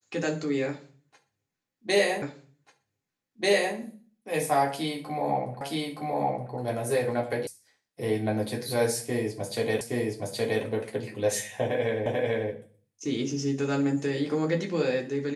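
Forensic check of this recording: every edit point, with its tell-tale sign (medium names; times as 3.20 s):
2.22 s: repeat of the last 1.54 s
5.61 s: repeat of the last 0.92 s
7.47 s: sound stops dead
9.81 s: repeat of the last 0.82 s
12.06 s: repeat of the last 0.44 s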